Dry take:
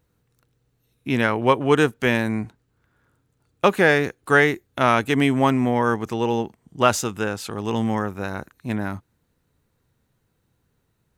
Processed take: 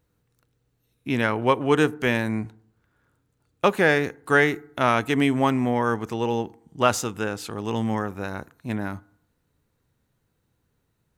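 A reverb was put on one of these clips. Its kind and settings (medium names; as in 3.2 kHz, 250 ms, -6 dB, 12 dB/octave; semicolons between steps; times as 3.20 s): FDN reverb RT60 0.67 s, low-frequency decay 1.05×, high-frequency decay 0.4×, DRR 19.5 dB; trim -2.5 dB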